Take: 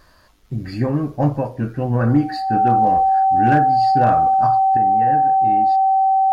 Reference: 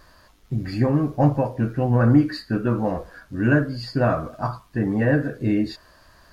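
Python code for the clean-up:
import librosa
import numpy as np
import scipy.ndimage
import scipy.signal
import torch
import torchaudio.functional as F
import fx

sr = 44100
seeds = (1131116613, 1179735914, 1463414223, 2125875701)

y = fx.fix_declip(x, sr, threshold_db=-6.5)
y = fx.notch(y, sr, hz=770.0, q=30.0)
y = fx.gain(y, sr, db=fx.steps((0.0, 0.0), (4.77, 8.5)))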